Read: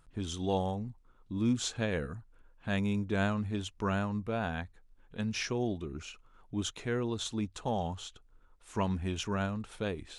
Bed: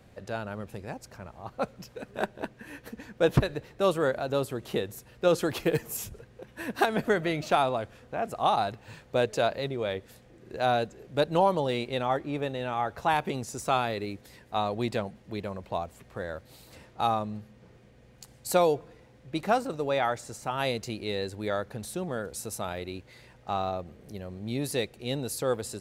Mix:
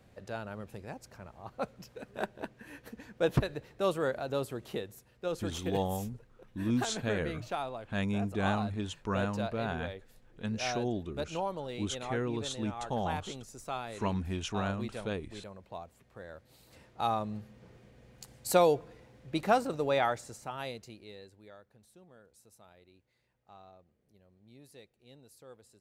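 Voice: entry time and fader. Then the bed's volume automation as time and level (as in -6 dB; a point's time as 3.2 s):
5.25 s, -1.0 dB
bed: 4.58 s -5 dB
5.14 s -11.5 dB
16.23 s -11.5 dB
17.45 s -1 dB
20.01 s -1 dB
21.62 s -24.5 dB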